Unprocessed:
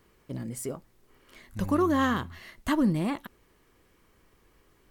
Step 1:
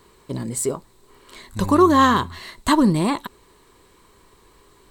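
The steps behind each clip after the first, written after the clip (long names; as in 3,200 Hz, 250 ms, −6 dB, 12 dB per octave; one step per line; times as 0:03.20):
thirty-one-band graphic EQ 400 Hz +6 dB, 1,000 Hz +10 dB, 4,000 Hz +11 dB, 8,000 Hz +11 dB
level +7 dB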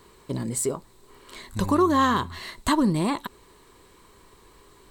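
downward compressor 1.5 to 1, threshold −27 dBFS, peak gain reduction 6.5 dB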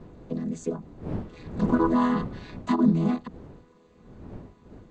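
channel vocoder with a chord as carrier major triad, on E3
wind on the microphone 270 Hz −39 dBFS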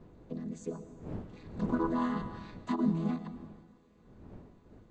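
dense smooth reverb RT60 1.4 s, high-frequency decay 0.9×, pre-delay 90 ms, DRR 11 dB
level −8.5 dB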